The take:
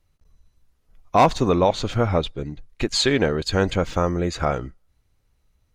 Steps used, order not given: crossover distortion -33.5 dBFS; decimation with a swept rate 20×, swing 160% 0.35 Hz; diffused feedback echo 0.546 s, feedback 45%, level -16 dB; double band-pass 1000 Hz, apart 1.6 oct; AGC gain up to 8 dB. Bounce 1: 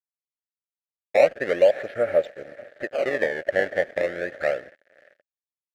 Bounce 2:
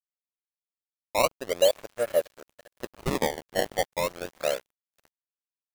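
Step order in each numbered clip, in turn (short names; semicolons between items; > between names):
decimation with a swept rate > diffused feedback echo > crossover distortion > double band-pass > AGC; AGC > double band-pass > decimation with a swept rate > diffused feedback echo > crossover distortion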